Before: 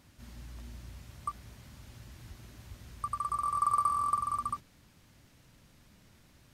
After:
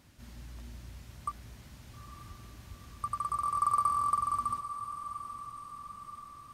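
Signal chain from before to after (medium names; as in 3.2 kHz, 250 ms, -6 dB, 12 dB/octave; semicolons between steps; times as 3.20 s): echo that smears into a reverb 900 ms, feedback 53%, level -11 dB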